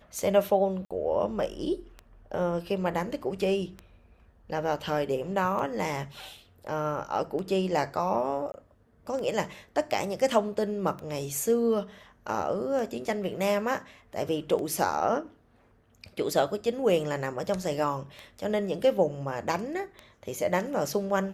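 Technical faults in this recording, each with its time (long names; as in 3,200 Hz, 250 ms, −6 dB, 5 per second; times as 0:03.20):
scratch tick 33 1/3 rpm
0:00.85–0:00.91: drop-out 56 ms
0:08.52–0:08.54: drop-out 20 ms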